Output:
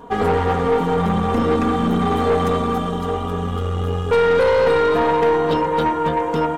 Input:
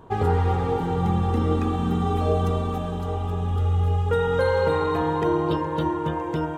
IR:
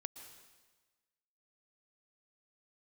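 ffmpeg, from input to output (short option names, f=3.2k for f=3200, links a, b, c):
-af "aecho=1:1:4.2:1,aeval=exprs='(tanh(7.94*val(0)+0.4)-tanh(0.4))/7.94':c=same,lowshelf=f=97:g=-9,volume=7dB"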